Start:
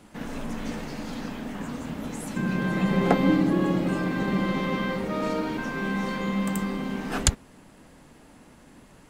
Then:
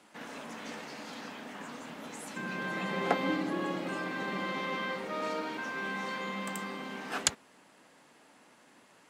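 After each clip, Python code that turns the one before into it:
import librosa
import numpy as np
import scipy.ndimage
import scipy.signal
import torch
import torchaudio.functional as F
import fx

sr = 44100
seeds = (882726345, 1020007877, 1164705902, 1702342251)

y = fx.weighting(x, sr, curve='A')
y = y * 10.0 ** (-4.0 / 20.0)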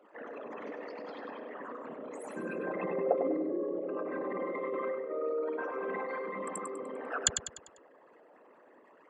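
y = fx.envelope_sharpen(x, sr, power=3.0)
y = fx.echo_feedback(y, sr, ms=99, feedback_pct=42, wet_db=-7.5)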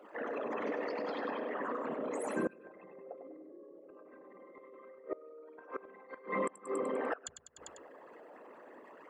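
y = fx.hum_notches(x, sr, base_hz=60, count=3)
y = fx.gate_flip(y, sr, shuts_db=-28.0, range_db=-25)
y = y * 10.0 ** (5.5 / 20.0)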